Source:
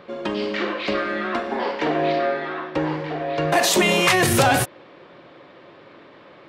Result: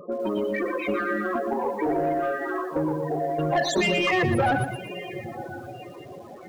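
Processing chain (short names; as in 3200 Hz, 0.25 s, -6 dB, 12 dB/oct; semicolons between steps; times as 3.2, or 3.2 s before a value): in parallel at +1.5 dB: compressor 8:1, threshold -29 dBFS, peak gain reduction 16 dB; 0.72–2.39 on the sum: notch 610 Hz, Q 14; diffused feedback echo 1.018 s, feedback 40%, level -15 dB; on a send at -16.5 dB: reverb RT60 0.40 s, pre-delay 78 ms; on the sum: loudest bins only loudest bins 16; reverb removal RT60 0.51 s; soft clip -15 dBFS, distortion -15 dB; lo-fi delay 0.118 s, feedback 35%, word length 8-bit, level -8 dB; gain -2 dB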